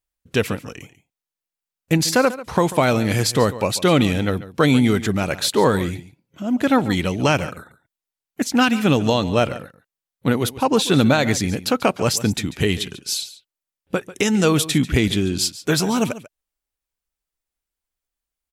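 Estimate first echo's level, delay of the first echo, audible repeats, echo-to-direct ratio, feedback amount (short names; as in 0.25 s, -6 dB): -16.0 dB, 0.142 s, 1, -16.0 dB, no steady repeat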